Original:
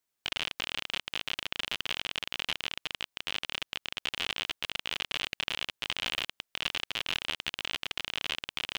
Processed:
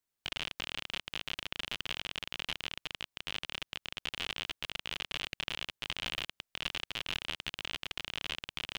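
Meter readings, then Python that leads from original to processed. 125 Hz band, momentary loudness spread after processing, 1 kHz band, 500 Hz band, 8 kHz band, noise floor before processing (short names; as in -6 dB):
+0.5 dB, 3 LU, -4.0 dB, -3.5 dB, -4.5 dB, -84 dBFS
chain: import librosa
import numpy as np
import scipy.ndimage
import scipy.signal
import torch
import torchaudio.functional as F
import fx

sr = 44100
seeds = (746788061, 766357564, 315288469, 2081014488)

y = fx.low_shelf(x, sr, hz=200.0, db=7.0)
y = F.gain(torch.from_numpy(y), -4.5).numpy()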